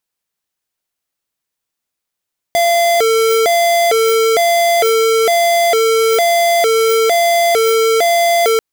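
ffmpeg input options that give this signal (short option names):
-f lavfi -i "aevalsrc='0.251*(2*lt(mod((567*t+118/1.1*(0.5-abs(mod(1.1*t,1)-0.5))),1),0.5)-1)':d=6.04:s=44100"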